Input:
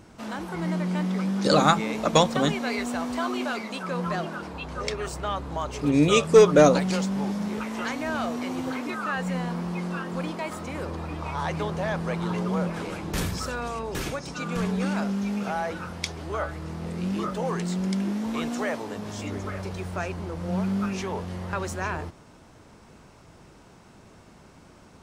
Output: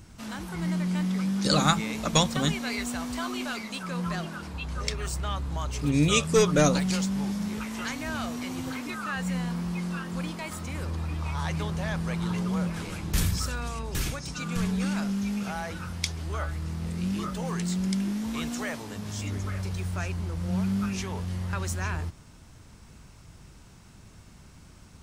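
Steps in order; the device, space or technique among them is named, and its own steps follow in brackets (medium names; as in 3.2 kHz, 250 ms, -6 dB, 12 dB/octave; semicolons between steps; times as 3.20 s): smiley-face EQ (bass shelf 150 Hz +8.5 dB; peaking EQ 510 Hz -9 dB 2.6 oct; treble shelf 6.5 kHz +6.5 dB)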